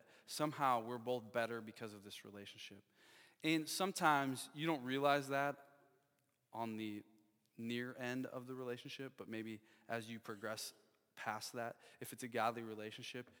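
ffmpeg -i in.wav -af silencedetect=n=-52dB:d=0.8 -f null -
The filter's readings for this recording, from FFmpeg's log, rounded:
silence_start: 5.61
silence_end: 6.53 | silence_duration: 0.93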